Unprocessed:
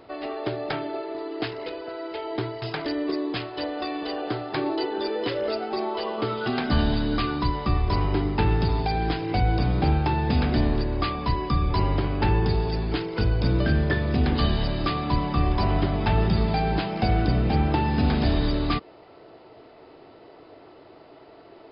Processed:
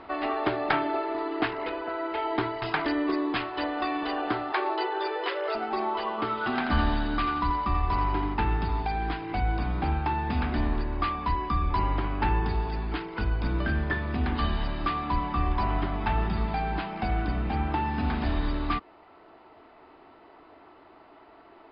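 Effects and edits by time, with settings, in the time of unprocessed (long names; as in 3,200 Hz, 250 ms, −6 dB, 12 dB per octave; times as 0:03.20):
0:01.40–0:02.18: low-pass filter 3,300 Hz 6 dB per octave
0:04.52–0:05.55: Butterworth high-pass 350 Hz 72 dB per octave
0:06.29–0:08.34: feedback echo with a high-pass in the loop 85 ms, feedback 50%, level −7 dB
whole clip: low-pass filter 2,600 Hz 12 dB per octave; speech leveller 2 s; graphic EQ with 10 bands 125 Hz −12 dB, 500 Hz −10 dB, 1,000 Hz +4 dB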